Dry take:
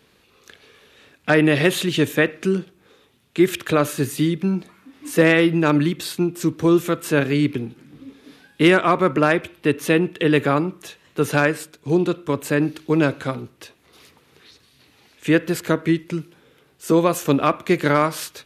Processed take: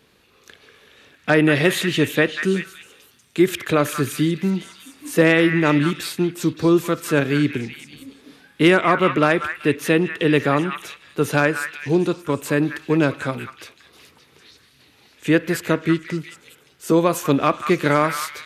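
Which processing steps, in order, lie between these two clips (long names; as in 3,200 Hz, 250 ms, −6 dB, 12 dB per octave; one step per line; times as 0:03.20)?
0:02.46–0:03.42: high-shelf EQ 8,200 Hz +7.5 dB
on a send: echo through a band-pass that steps 190 ms, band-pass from 1,600 Hz, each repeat 0.7 octaves, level −5 dB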